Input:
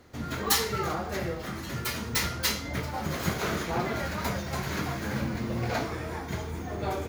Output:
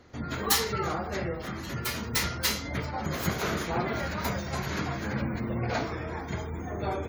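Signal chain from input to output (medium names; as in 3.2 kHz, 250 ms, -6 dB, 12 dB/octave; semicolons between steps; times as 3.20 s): spectral gate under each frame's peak -30 dB strong; 2.51–4.70 s: treble shelf 12 kHz +7 dB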